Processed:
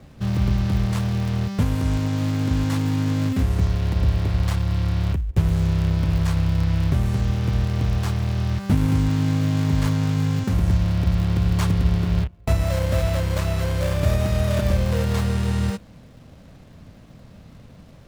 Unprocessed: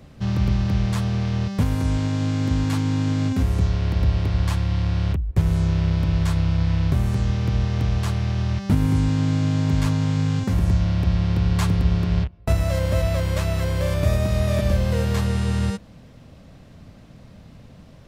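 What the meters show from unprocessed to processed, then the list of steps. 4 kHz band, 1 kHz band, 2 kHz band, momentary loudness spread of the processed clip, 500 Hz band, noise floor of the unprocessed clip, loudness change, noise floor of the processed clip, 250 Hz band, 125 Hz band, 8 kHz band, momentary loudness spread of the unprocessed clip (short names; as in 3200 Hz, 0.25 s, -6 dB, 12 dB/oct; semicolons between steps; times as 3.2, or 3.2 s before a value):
0.0 dB, 0.0 dB, 0.0 dB, 3 LU, 0.0 dB, -46 dBFS, 0.0 dB, -46 dBFS, 0.0 dB, 0.0 dB, +0.5 dB, 3 LU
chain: switching dead time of 0.25 ms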